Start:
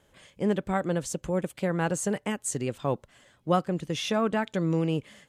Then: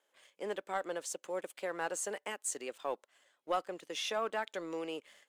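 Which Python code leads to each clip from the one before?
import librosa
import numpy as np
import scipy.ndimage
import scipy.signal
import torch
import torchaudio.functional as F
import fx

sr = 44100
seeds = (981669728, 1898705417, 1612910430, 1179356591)

y = scipy.signal.sosfilt(scipy.signal.bessel(4, 530.0, 'highpass', norm='mag', fs=sr, output='sos'), x)
y = fx.leveller(y, sr, passes=1)
y = F.gain(torch.from_numpy(y), -8.5).numpy()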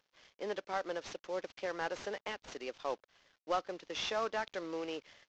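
y = fx.cvsd(x, sr, bps=32000)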